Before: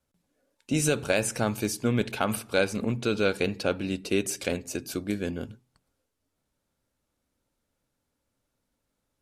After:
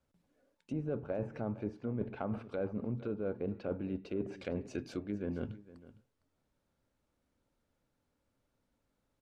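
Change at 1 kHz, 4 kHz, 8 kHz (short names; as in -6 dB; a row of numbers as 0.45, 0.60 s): -14.0 dB, -24.5 dB, under -30 dB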